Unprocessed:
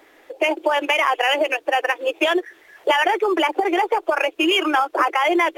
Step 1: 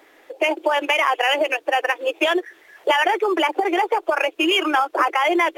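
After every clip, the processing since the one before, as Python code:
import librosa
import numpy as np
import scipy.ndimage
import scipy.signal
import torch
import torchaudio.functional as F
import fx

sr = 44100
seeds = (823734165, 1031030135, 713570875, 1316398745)

y = fx.low_shelf(x, sr, hz=150.0, db=-6.0)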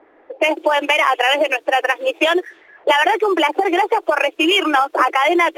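y = fx.env_lowpass(x, sr, base_hz=1100.0, full_db=-20.0)
y = y * 10.0 ** (3.5 / 20.0)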